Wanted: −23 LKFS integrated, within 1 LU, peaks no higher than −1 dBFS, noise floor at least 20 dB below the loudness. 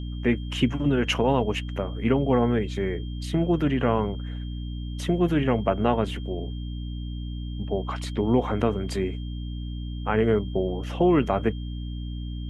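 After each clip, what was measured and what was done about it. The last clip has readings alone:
mains hum 60 Hz; hum harmonics up to 300 Hz; level of the hum −30 dBFS; interfering tone 3,200 Hz; level of the tone −48 dBFS; integrated loudness −26.0 LKFS; sample peak −8.0 dBFS; target loudness −23.0 LKFS
→ hum removal 60 Hz, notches 5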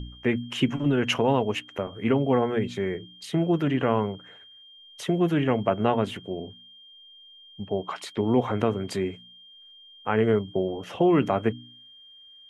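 mains hum none found; interfering tone 3,200 Hz; level of the tone −48 dBFS
→ notch filter 3,200 Hz, Q 30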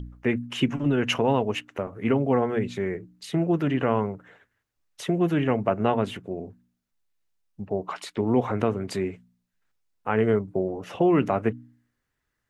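interfering tone none found; integrated loudness −26.0 LKFS; sample peak −8.5 dBFS; target loudness −23.0 LKFS
→ level +3 dB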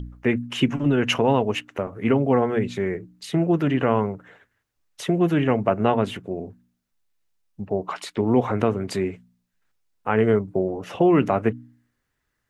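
integrated loudness −23.0 LKFS; sample peak −5.5 dBFS; background noise floor −77 dBFS

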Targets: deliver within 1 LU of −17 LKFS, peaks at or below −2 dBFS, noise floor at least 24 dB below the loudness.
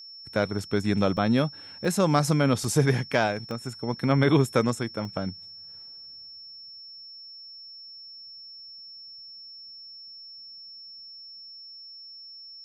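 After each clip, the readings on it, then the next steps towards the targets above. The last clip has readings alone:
number of dropouts 6; longest dropout 1.5 ms; interfering tone 5,400 Hz; level of the tone −42 dBFS; integrated loudness −25.5 LKFS; sample peak −8.5 dBFS; target loudness −17.0 LKFS
→ repair the gap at 0:00.59/0:01.17/0:01.85/0:02.64/0:03.51/0:05.05, 1.5 ms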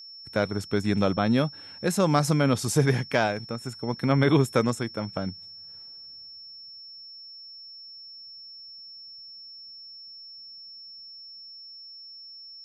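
number of dropouts 0; interfering tone 5,400 Hz; level of the tone −42 dBFS
→ notch filter 5,400 Hz, Q 30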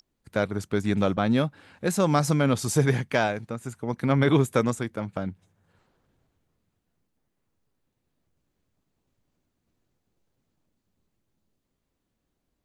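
interfering tone none found; integrated loudness −25.5 LKFS; sample peak −8.5 dBFS; target loudness −17.0 LKFS
→ level +8.5 dB
brickwall limiter −2 dBFS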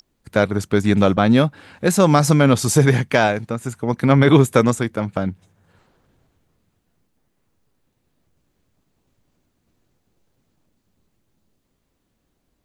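integrated loudness −17.0 LKFS; sample peak −2.0 dBFS; background noise floor −70 dBFS

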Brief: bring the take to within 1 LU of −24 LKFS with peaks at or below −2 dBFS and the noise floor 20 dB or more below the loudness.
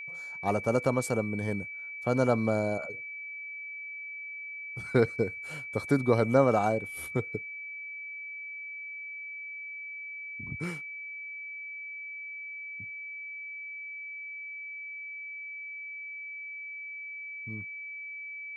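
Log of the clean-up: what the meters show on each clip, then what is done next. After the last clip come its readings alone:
interfering tone 2,300 Hz; level of the tone −38 dBFS; integrated loudness −33.0 LKFS; sample peak −10.0 dBFS; target loudness −24.0 LKFS
→ notch filter 2,300 Hz, Q 30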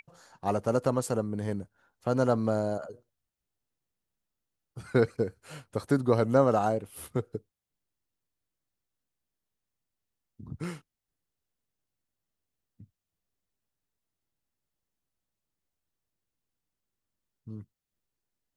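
interfering tone none found; integrated loudness −29.0 LKFS; sample peak −10.0 dBFS; target loudness −24.0 LKFS
→ level +5 dB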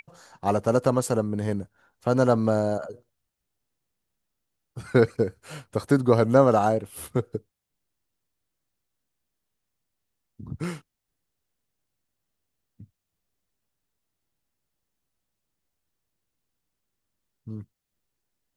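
integrated loudness −24.0 LKFS; sample peak −5.0 dBFS; background noise floor −82 dBFS

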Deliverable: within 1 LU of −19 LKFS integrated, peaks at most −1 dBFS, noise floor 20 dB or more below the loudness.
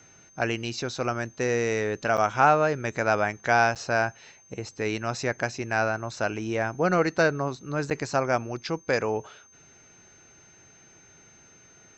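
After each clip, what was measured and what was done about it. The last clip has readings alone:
number of dropouts 3; longest dropout 7.8 ms; interfering tone 6,300 Hz; level of the tone −54 dBFS; integrated loudness −26.0 LKFS; sample peak −6.0 dBFS; target loudness −19.0 LKFS
→ repair the gap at 0:02.17/0:03.75/0:07.90, 7.8 ms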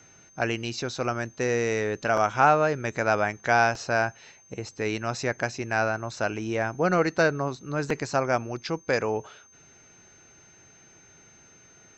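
number of dropouts 0; interfering tone 6,300 Hz; level of the tone −54 dBFS
→ notch filter 6,300 Hz, Q 30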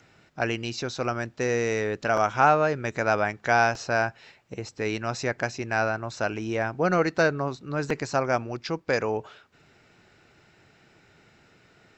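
interfering tone none found; integrated loudness −26.0 LKFS; sample peak −6.0 dBFS; target loudness −19.0 LKFS
→ level +7 dB
brickwall limiter −1 dBFS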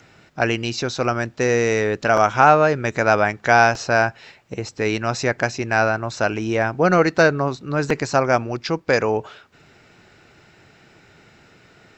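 integrated loudness −19.5 LKFS; sample peak −1.0 dBFS; background noise floor −53 dBFS

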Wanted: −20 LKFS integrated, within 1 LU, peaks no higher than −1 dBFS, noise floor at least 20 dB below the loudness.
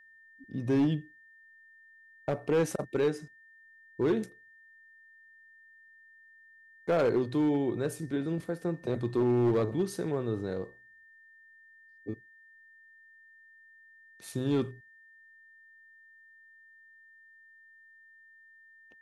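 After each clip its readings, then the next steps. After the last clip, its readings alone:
share of clipped samples 0.6%; peaks flattened at −21.0 dBFS; interfering tone 1,800 Hz; level of the tone −55 dBFS; integrated loudness −31.0 LKFS; sample peak −21.0 dBFS; target loudness −20.0 LKFS
→ clipped peaks rebuilt −21 dBFS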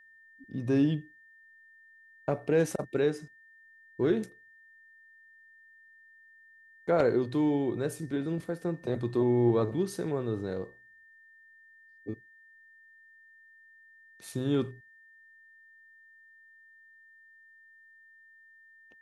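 share of clipped samples 0.0%; interfering tone 1,800 Hz; level of the tone −55 dBFS
→ notch filter 1,800 Hz, Q 30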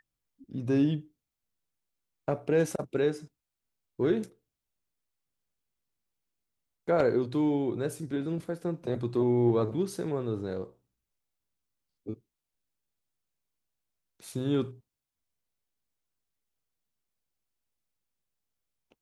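interfering tone none found; integrated loudness −30.0 LKFS; sample peak −12.0 dBFS; target loudness −20.0 LKFS
→ level +10 dB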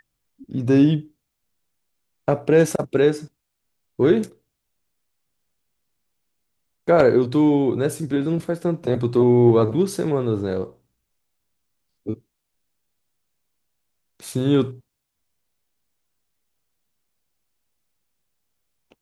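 integrated loudness −20.0 LKFS; sample peak −2.0 dBFS; background noise floor −78 dBFS

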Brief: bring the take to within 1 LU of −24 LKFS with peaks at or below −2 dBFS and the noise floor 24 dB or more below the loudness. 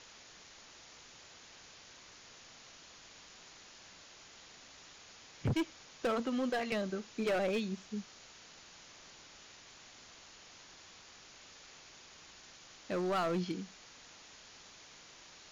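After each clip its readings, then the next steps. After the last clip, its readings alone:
share of clipped samples 1.0%; peaks flattened at −28.5 dBFS; background noise floor −57 dBFS; target noise floor −60 dBFS; integrated loudness −36.0 LKFS; sample peak −28.5 dBFS; target loudness −24.0 LKFS
→ clipped peaks rebuilt −28.5 dBFS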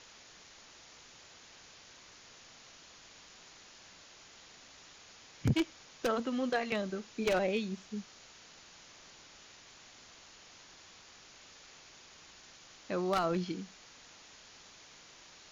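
share of clipped samples 0.0%; background noise floor −57 dBFS; target noise floor −59 dBFS
→ broadband denoise 6 dB, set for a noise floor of −57 dBFS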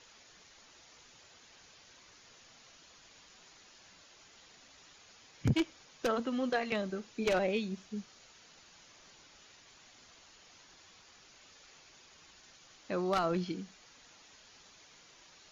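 background noise floor −60 dBFS; integrated loudness −34.5 LKFS; sample peak −19.5 dBFS; target loudness −24.0 LKFS
→ level +10.5 dB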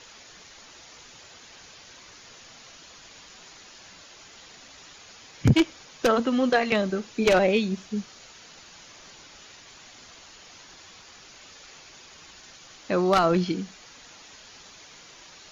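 integrated loudness −24.0 LKFS; sample peak −9.0 dBFS; background noise floor −49 dBFS

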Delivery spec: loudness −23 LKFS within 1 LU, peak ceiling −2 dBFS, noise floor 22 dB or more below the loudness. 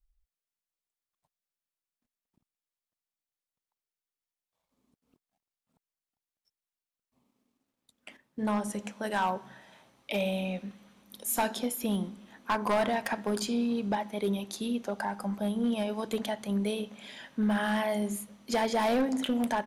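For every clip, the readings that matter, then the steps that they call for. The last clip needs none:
share of clipped samples 0.8%; peaks flattened at −22.0 dBFS; integrated loudness −31.0 LKFS; sample peak −22.0 dBFS; target loudness −23.0 LKFS
→ clipped peaks rebuilt −22 dBFS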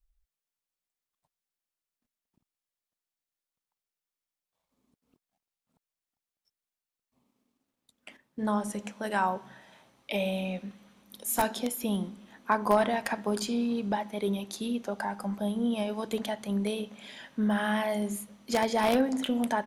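share of clipped samples 0.0%; integrated loudness −30.5 LKFS; sample peak −13.0 dBFS; target loudness −23.0 LKFS
→ level +7.5 dB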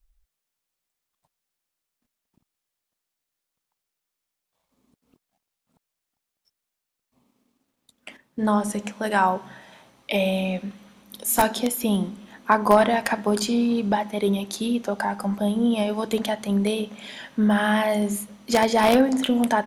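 integrated loudness −23.0 LKFS; sample peak −5.5 dBFS; background noise floor −84 dBFS

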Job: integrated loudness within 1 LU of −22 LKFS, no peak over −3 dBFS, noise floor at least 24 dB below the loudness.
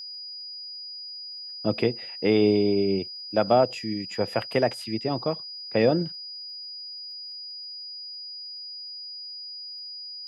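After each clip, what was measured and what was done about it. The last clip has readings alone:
crackle rate 32 per second; interfering tone 4,900 Hz; level of the tone −36 dBFS; integrated loudness −28.0 LKFS; sample peak −8.5 dBFS; target loudness −22.0 LKFS
→ click removal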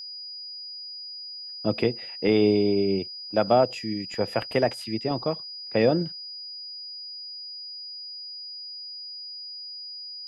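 crackle rate 0 per second; interfering tone 4,900 Hz; level of the tone −36 dBFS
→ notch filter 4,900 Hz, Q 30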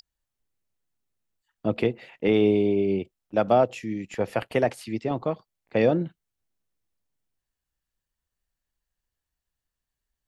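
interfering tone none found; integrated loudness −25.5 LKFS; sample peak −9.0 dBFS; target loudness −22.0 LKFS
→ level +3.5 dB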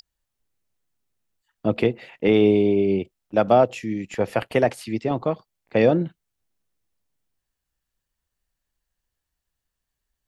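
integrated loudness −22.0 LKFS; sample peak −5.5 dBFS; background noise floor −83 dBFS

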